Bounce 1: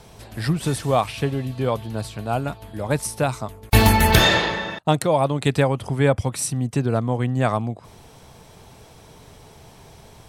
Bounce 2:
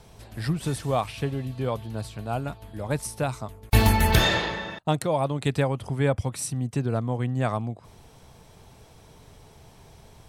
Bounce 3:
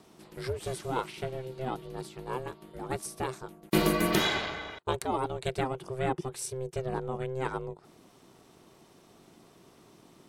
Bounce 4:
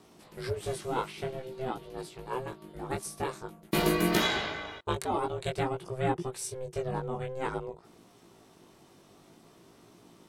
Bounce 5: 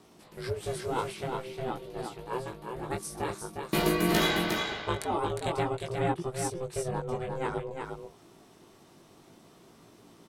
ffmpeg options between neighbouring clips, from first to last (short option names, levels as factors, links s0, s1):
-af "lowshelf=f=95:g=5.5,volume=0.501"
-af "aeval=exprs='val(0)*sin(2*PI*260*n/s)':c=same,lowshelf=f=150:g=-7,volume=0.75"
-af "flanger=delay=17:depth=3.3:speed=0.5,volume=1.41"
-af "aecho=1:1:357:0.562"